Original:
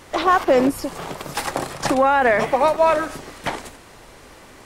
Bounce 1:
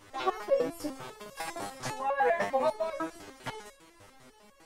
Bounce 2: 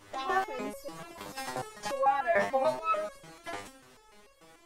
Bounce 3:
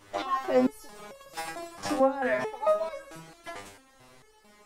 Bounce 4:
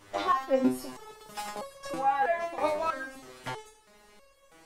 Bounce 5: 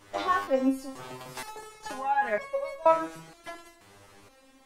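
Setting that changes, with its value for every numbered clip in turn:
step-sequenced resonator, speed: 10, 6.8, 4.5, 3.1, 2.1 Hertz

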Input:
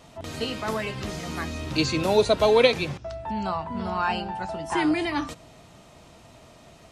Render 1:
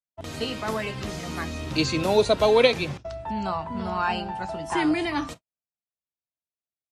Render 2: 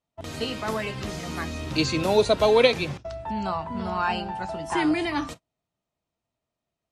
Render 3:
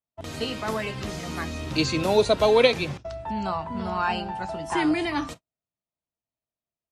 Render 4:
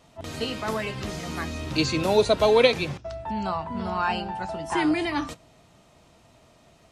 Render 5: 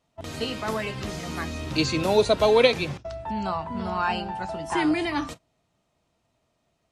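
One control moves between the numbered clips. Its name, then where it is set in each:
noise gate, range: −59, −35, −47, −6, −22 decibels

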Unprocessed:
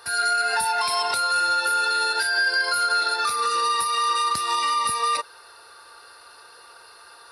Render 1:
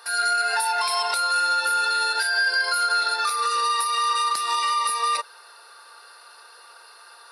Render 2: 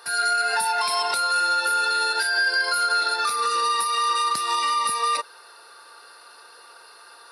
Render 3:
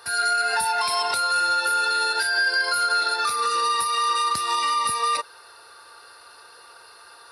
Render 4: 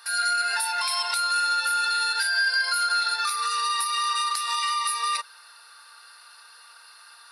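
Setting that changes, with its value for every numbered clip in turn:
high-pass filter, corner frequency: 500, 190, 44, 1,300 Hertz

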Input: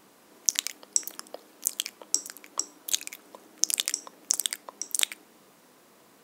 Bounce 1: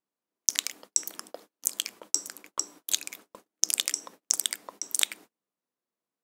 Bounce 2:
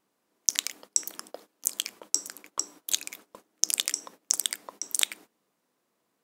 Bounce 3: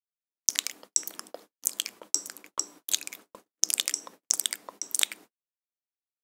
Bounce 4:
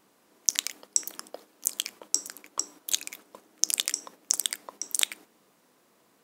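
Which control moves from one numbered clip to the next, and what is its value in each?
noise gate, range: −35, −19, −58, −7 decibels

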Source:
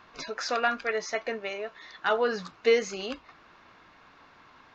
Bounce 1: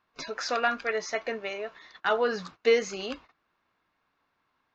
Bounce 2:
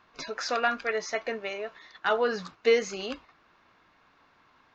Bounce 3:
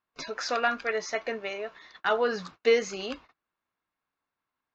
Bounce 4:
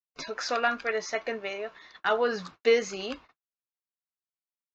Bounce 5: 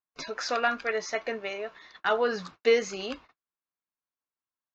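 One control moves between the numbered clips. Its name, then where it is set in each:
noise gate, range: −20, −7, −32, −59, −46 decibels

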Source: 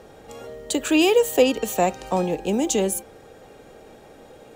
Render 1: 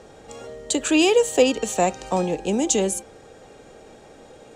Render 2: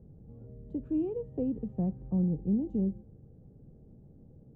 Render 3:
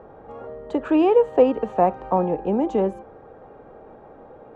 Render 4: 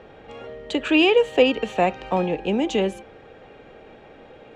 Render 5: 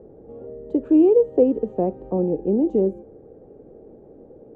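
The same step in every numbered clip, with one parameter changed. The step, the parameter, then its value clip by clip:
low-pass with resonance, frequency: 7,800, 150, 1,100, 2,700, 400 Hertz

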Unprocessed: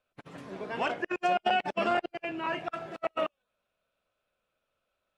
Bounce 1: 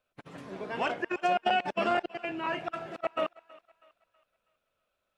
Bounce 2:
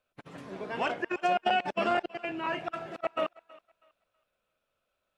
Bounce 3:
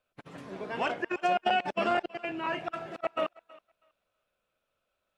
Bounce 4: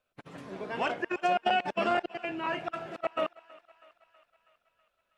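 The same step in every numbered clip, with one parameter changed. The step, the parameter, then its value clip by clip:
feedback echo with a high-pass in the loop, feedback: 44, 28, 18, 65%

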